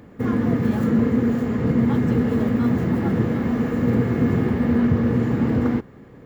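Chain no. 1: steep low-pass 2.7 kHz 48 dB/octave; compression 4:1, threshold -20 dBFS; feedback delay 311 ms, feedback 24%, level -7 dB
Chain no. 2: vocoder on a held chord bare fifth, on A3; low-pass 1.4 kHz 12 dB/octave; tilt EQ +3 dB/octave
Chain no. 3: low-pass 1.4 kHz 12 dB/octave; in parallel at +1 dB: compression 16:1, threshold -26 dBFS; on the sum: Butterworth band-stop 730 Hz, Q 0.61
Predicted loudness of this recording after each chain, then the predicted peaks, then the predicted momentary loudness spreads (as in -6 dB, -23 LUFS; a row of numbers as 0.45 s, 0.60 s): -23.5 LUFS, -27.5 LUFS, -19.0 LUFS; -11.0 dBFS, -14.5 dBFS, -6.0 dBFS; 2 LU, 3 LU, 3 LU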